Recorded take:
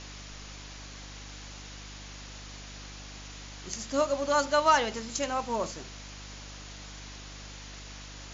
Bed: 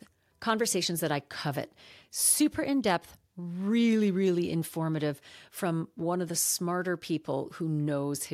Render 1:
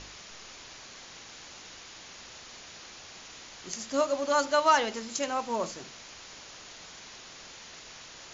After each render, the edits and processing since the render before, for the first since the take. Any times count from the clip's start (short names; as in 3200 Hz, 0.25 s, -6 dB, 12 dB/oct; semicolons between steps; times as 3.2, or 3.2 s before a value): de-hum 50 Hz, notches 6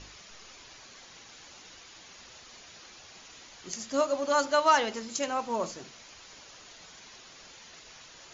denoiser 6 dB, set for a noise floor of -48 dBFS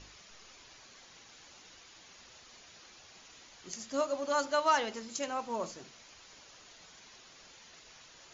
gain -5 dB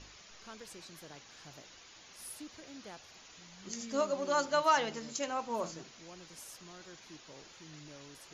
add bed -23 dB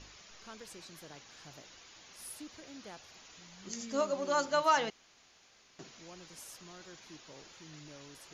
4.9–5.79 room tone